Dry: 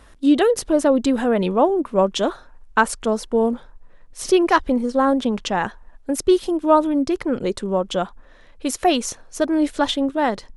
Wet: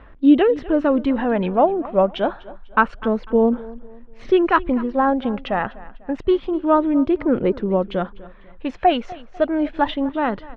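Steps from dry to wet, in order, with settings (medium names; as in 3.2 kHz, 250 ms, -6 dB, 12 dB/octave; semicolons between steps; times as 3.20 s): low-pass 2.8 kHz 24 dB/octave; phaser 0.27 Hz, delay 1.6 ms, feedback 37%; feedback delay 248 ms, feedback 38%, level -19.5 dB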